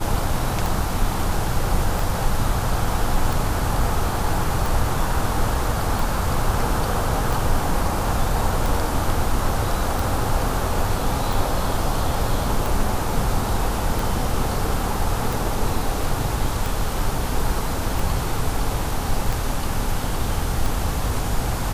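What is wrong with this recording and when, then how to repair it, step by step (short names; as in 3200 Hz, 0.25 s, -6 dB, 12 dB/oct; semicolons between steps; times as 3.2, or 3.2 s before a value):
tick 45 rpm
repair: de-click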